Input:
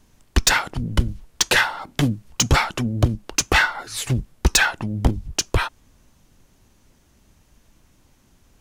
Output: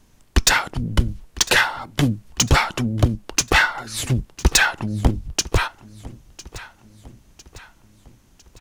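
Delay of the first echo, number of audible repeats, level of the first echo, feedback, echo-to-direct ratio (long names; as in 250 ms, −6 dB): 1,003 ms, 3, −19.0 dB, 50%, −18.0 dB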